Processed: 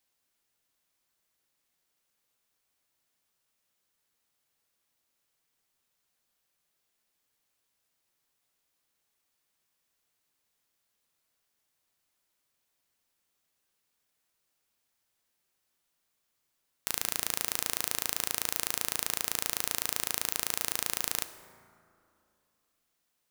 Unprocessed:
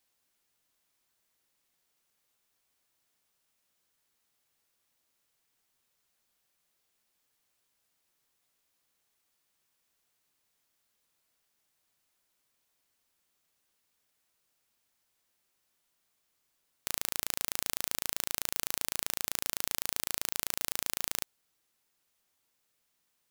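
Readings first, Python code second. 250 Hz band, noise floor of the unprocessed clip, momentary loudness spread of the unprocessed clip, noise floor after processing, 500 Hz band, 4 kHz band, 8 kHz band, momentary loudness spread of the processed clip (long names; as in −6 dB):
+2.0 dB, −78 dBFS, 2 LU, −79 dBFS, +2.5 dB, +2.0 dB, +2.5 dB, 2 LU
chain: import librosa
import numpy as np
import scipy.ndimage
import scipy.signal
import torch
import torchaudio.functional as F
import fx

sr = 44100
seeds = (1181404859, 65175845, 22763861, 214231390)

y = fx.leveller(x, sr, passes=2)
y = fx.rev_plate(y, sr, seeds[0], rt60_s=2.7, hf_ratio=0.4, predelay_ms=0, drr_db=10.0)
y = y * librosa.db_to_amplitude(2.0)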